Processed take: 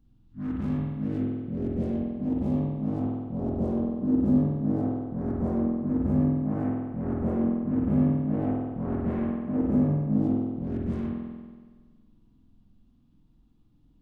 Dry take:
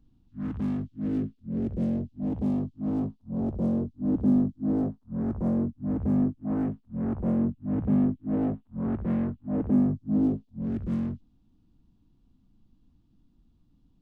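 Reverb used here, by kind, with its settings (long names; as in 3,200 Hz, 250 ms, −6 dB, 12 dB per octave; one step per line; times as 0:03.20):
spring reverb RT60 1.5 s, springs 47 ms, chirp 30 ms, DRR −2 dB
level −1.5 dB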